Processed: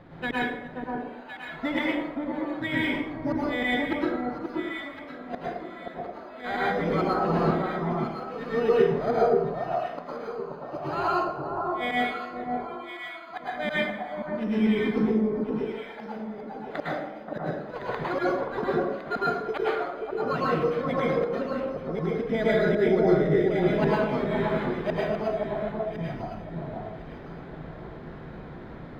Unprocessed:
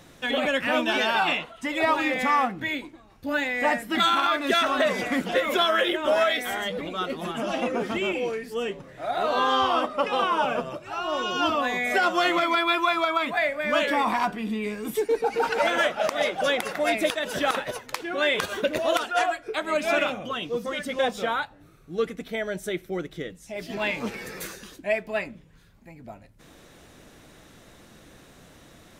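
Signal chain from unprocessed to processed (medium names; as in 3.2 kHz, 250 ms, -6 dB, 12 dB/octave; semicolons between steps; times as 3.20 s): treble shelf 4.7 kHz -6 dB; careless resampling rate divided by 8×, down filtered, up hold; distance through air 370 m; inverted gate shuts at -21 dBFS, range -30 dB; on a send: echo whose repeats swap between lows and highs 530 ms, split 1.2 kHz, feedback 51%, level -2.5 dB; on the sum: plate-style reverb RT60 0.82 s, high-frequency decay 0.65×, pre-delay 95 ms, DRR -6.5 dB; trim +2.5 dB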